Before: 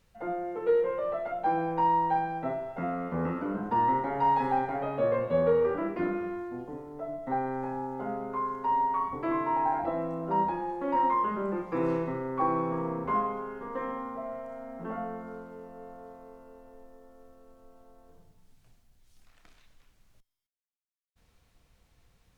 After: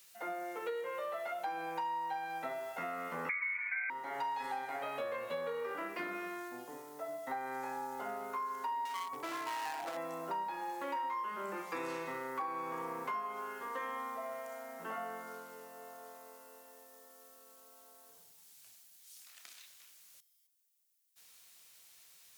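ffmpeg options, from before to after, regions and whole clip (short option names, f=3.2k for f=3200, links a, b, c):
-filter_complex "[0:a]asettb=1/sr,asplit=3[a][b][c];[a]atrim=end=3.294[d];[b]atrim=start=3.29:end=3.9,asetpts=PTS-STARTPTS,afade=t=in:d=0.004:c=qsin,afade=t=out:st=0.606:d=0.004:c=qsin,equalizer=f=380:t=o:w=0.42:g=9,lowpass=f=2.1k:t=q:w=0.5098,lowpass=f=2.1k:t=q:w=0.6013,lowpass=f=2.1k:t=q:w=0.9,lowpass=f=2.1k:t=q:w=2.563,afreqshift=-2500,aecho=1:1:4.1:0.78,atrim=end_sample=26901[e];[c]atrim=start=3.896[f];[d][e]acrossfade=d=0.004:c1=hsin:c2=qsin[g];[g][f]acrossfade=d=0.004:c1=qsin:c2=hsin,asettb=1/sr,asplit=3[h][i][j];[h]atrim=end=8.854[k];[i]atrim=start=8.85:end=9.97,asetpts=PTS-STARTPTS,afade=t=in:d=0.004:c=qsin,afade=t=out:st=1.116:d=0.004:c=qsin,equalizer=f=2.4k:t=o:w=1.9:g=-7.5,aeval=exprs='clip(val(0),-1,0.0266)':c=same[l];[j]atrim=start=9.966[m];[k][l]acrossfade=d=0.004:c1=hsin:c2=qsin[n];[n][m]acrossfade=d=0.004:c1=qsin:c2=hsin,highpass=72,aderivative,acompressor=threshold=-52dB:ratio=6,volume=16dB"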